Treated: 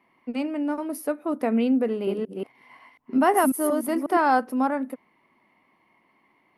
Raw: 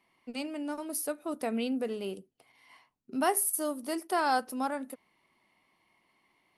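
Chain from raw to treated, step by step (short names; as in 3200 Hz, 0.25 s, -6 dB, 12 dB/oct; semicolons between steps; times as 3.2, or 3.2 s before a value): 1.89–4.17 reverse delay 0.181 s, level -1 dB; graphic EQ 125/250/500/1000/2000/4000/8000 Hz +4/+9/+5/+6/+6/-4/-8 dB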